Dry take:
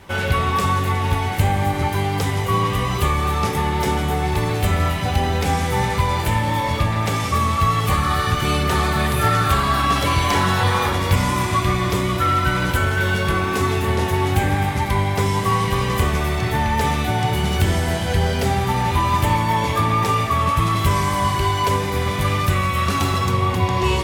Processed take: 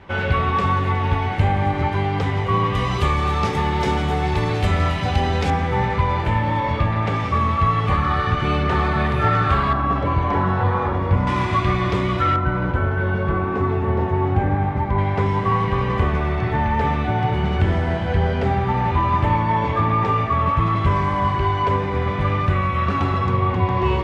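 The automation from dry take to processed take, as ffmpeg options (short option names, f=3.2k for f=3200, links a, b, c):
-af "asetnsamples=n=441:p=0,asendcmd='2.75 lowpass f 4900;5.5 lowpass f 2400;9.73 lowpass f 1200;11.27 lowpass f 3100;12.36 lowpass f 1200;14.98 lowpass f 2000',lowpass=2.8k"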